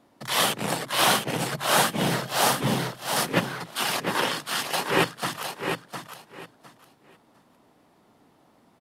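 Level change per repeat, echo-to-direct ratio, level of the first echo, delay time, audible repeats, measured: -14.0 dB, -6.5 dB, -6.5 dB, 707 ms, 3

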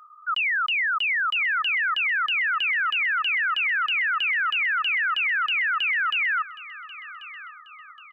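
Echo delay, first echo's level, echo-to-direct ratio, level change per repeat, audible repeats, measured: 1088 ms, -17.0 dB, -16.0 dB, -7.5 dB, 3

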